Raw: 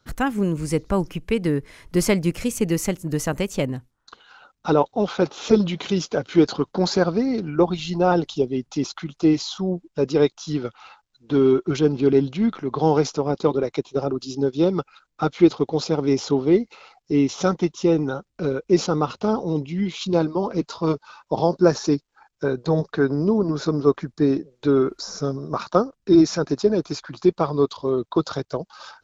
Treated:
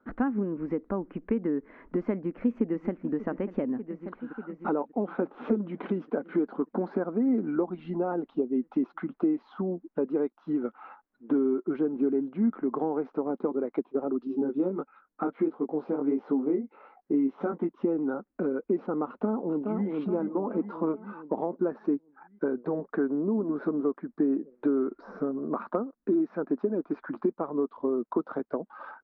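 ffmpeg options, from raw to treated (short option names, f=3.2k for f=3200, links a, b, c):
-filter_complex "[0:a]asplit=2[a][b];[b]afade=t=in:st=2.13:d=0.01,afade=t=out:st=3.14:d=0.01,aecho=0:1:590|1180|1770|2360|2950|3540|4130|4720|5310|5900:0.158489|0.118867|0.0891502|0.0668627|0.050147|0.0376103|0.0282077|0.0211558|0.0158668|0.0119001[c];[a][c]amix=inputs=2:normalize=0,asettb=1/sr,asplit=3[d][e][f];[d]atrim=end=14.274[g];[e]atrim=start=14.27:end=17.69,asetpts=PTS-STARTPTS,afade=t=in:d=0.004:c=qsin,afade=t=out:st=3.416:d=0.004:c=qsin,flanger=delay=17.5:depth=4.9:speed=1.5[h];[f]atrim=start=17.686[i];[g][h]acrossfade=d=0.004:c1=hsin:c2=qsin[j];[j][i]acrossfade=d=0.004:c1=qsin:c2=hsin,asplit=2[k][l];[l]afade=t=in:st=19.07:d=0.01,afade=t=out:st=19.86:d=0.01,aecho=0:1:420|840|1260|1680|2100|2520:0.446684|0.223342|0.111671|0.0558354|0.0279177|0.0139589[m];[k][m]amix=inputs=2:normalize=0,lowpass=f=1.7k:w=0.5412,lowpass=f=1.7k:w=1.3066,acompressor=threshold=-28dB:ratio=6,lowshelf=f=170:t=q:w=3:g=-11.5"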